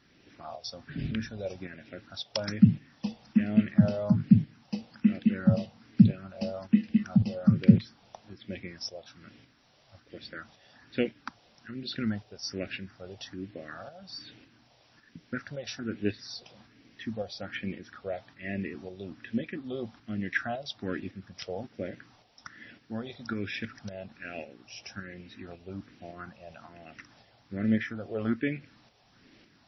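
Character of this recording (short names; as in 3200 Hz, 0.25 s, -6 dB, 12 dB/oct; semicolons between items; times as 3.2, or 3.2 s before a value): phasing stages 4, 1.2 Hz, lowest notch 270–1100 Hz; a quantiser's noise floor 10-bit, dither triangular; tremolo saw up 1.8 Hz, depth 50%; MP3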